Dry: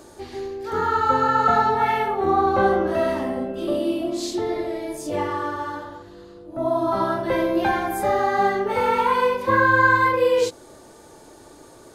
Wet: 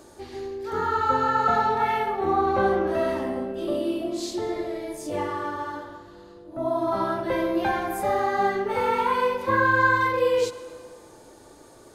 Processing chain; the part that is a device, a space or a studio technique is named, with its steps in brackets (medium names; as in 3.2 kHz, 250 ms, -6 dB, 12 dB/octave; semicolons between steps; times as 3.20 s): saturated reverb return (on a send at -12 dB: reverberation RT60 1.8 s, pre-delay 73 ms + saturation -17.5 dBFS, distortion -12 dB); on the sum: trim -3.5 dB